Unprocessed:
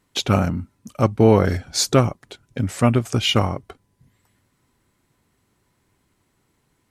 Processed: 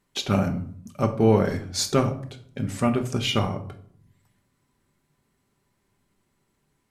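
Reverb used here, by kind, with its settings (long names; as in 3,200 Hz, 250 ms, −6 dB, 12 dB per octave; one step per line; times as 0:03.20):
rectangular room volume 750 cubic metres, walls furnished, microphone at 1.2 metres
level −6 dB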